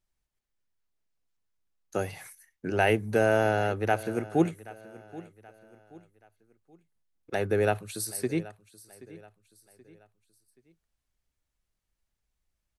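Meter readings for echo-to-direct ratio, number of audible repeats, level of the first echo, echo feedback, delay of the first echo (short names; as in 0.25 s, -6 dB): -18.5 dB, 3, -19.0 dB, 40%, 0.778 s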